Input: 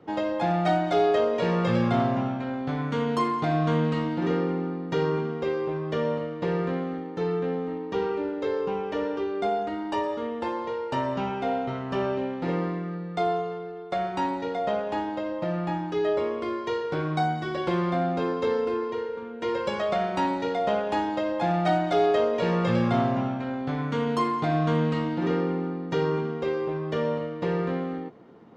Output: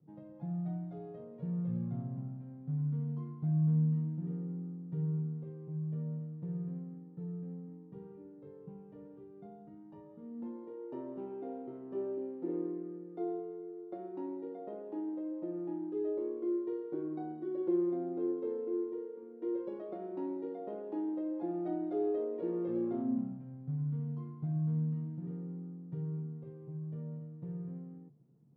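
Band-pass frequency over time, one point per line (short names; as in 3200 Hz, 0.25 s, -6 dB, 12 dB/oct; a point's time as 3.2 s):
band-pass, Q 7.2
10.06 s 150 Hz
10.82 s 340 Hz
22.93 s 340 Hz
23.51 s 140 Hz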